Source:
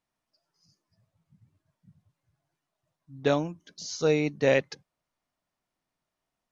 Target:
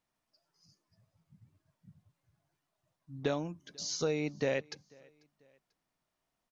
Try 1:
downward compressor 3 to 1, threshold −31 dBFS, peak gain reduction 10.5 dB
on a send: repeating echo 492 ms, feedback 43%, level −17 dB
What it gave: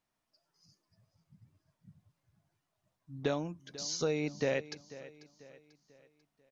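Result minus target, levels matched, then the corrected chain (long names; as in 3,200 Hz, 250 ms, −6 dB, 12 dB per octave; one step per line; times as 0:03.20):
echo-to-direct +10.5 dB
downward compressor 3 to 1, threshold −31 dBFS, peak gain reduction 10.5 dB
on a send: repeating echo 492 ms, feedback 43%, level −27.5 dB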